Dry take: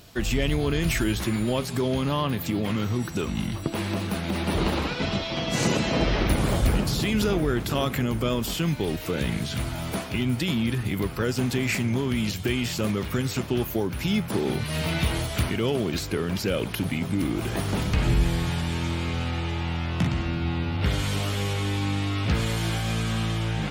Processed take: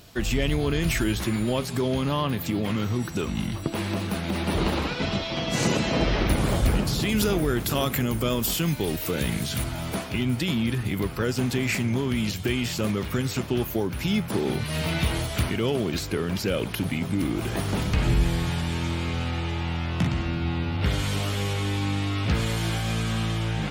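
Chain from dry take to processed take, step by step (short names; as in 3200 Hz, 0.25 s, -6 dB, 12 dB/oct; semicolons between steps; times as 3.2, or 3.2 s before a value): 7.09–9.64 high shelf 7900 Hz +11.5 dB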